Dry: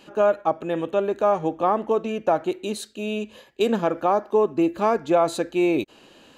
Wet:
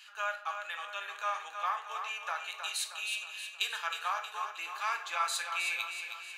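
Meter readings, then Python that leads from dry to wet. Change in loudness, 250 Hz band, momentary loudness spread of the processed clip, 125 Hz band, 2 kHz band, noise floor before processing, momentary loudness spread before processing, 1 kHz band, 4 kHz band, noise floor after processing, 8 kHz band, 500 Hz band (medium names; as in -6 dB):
-12.0 dB, under -40 dB, 7 LU, under -40 dB, +1.0 dB, -53 dBFS, 9 LU, -10.0 dB, +1.5 dB, -49 dBFS, +1.5 dB, -28.0 dB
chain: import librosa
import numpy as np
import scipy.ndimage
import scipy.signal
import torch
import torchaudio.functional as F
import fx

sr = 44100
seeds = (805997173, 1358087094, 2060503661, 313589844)

p1 = scipy.signal.sosfilt(scipy.signal.butter(4, 1400.0, 'highpass', fs=sr, output='sos'), x)
p2 = p1 + fx.echo_feedback(p1, sr, ms=315, feedback_pct=51, wet_db=-7.5, dry=0)
y = fx.room_shoebox(p2, sr, seeds[0], volume_m3=79.0, walls='mixed', distance_m=0.38)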